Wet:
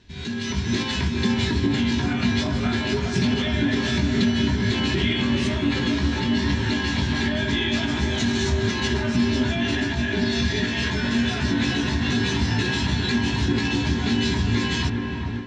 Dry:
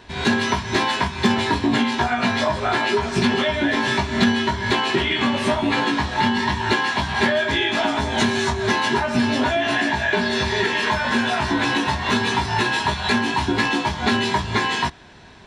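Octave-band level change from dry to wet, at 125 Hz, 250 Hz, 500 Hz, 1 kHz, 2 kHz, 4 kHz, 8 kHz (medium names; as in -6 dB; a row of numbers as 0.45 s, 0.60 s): +4.5 dB, +0.5 dB, -5.5 dB, -12.0 dB, -6.0 dB, -2.5 dB, -2.0 dB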